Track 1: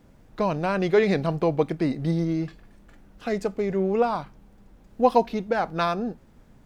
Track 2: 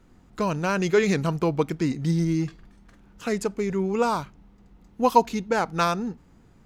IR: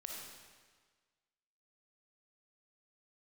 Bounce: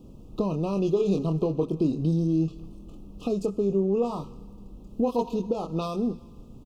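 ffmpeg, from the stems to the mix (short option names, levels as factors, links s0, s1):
-filter_complex "[0:a]acompressor=threshold=0.0251:ratio=3,volume=1.06,asplit=2[s0][s1];[1:a]aeval=exprs='0.668*(cos(1*acos(clip(val(0)/0.668,-1,1)))-cos(1*PI/2))+0.0473*(cos(7*acos(clip(val(0)/0.668,-1,1)))-cos(7*PI/2))':c=same,adelay=25,volume=0.562,asplit=2[s2][s3];[s3]volume=0.2[s4];[s1]apad=whole_len=294397[s5];[s2][s5]sidechaincompress=threshold=0.00631:ratio=3:attack=16:release=141[s6];[2:a]atrim=start_sample=2205[s7];[s4][s7]afir=irnorm=-1:irlink=0[s8];[s0][s6][s8]amix=inputs=3:normalize=0,asuperstop=centerf=1800:order=20:qfactor=1.5,lowshelf=f=530:t=q:w=1.5:g=6.5"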